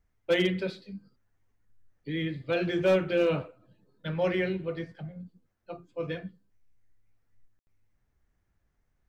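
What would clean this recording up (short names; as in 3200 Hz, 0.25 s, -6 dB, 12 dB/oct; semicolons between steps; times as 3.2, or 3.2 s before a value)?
clip repair -17.5 dBFS; room tone fill 7.59–7.67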